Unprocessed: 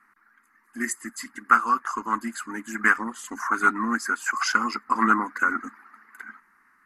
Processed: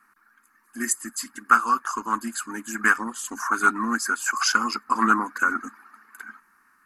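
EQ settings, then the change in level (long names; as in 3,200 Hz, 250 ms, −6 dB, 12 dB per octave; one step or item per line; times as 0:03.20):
high-shelf EQ 3,800 Hz +8.5 dB
notch filter 2,000 Hz, Q 5.7
0.0 dB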